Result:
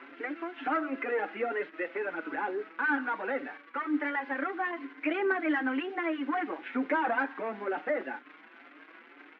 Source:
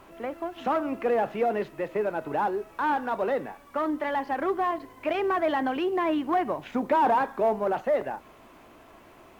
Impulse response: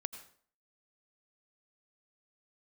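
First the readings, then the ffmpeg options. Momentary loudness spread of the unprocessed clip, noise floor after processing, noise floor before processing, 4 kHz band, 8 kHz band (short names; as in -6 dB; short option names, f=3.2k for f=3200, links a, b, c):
7 LU, -55 dBFS, -53 dBFS, -5.0 dB, n/a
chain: -filter_complex "[0:a]lowshelf=f=460:g=-2.5,aphaser=in_gain=1:out_gain=1:delay=2.5:decay=0.32:speed=0.38:type=triangular,asplit=2[a][b];[b]acompressor=threshold=-35dB:ratio=5,volume=-2dB[c];[a][c]amix=inputs=2:normalize=0,acrusher=bits=8:dc=4:mix=0:aa=0.000001,highpass=f=270:w=0.5412,highpass=f=270:w=1.3066,equalizer=f=280:t=q:w=4:g=10,equalizer=f=400:t=q:w=4:g=-4,equalizer=f=640:t=q:w=4:g=-9,equalizer=f=990:t=q:w=4:g=-6,equalizer=f=1.5k:t=q:w=4:g=8,equalizer=f=2.1k:t=q:w=4:g=6,lowpass=f=2.9k:w=0.5412,lowpass=f=2.9k:w=1.3066,acontrast=53,asplit=2[d][e];[e]adelay=5.5,afreqshift=2.1[f];[d][f]amix=inputs=2:normalize=1,volume=-7.5dB"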